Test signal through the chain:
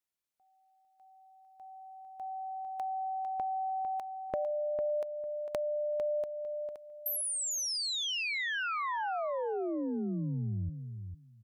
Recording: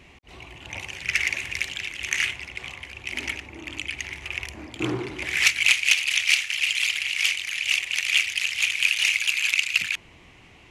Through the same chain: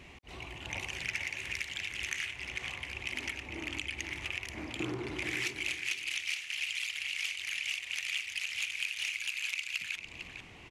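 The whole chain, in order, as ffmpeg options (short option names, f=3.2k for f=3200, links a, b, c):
-filter_complex "[0:a]acompressor=threshold=-32dB:ratio=6,asplit=2[a][b];[b]adelay=451,lowpass=f=4.2k:p=1,volume=-7.5dB,asplit=2[c][d];[d]adelay=451,lowpass=f=4.2k:p=1,volume=0.17,asplit=2[e][f];[f]adelay=451,lowpass=f=4.2k:p=1,volume=0.17[g];[c][e][g]amix=inputs=3:normalize=0[h];[a][h]amix=inputs=2:normalize=0,volume=-1.5dB"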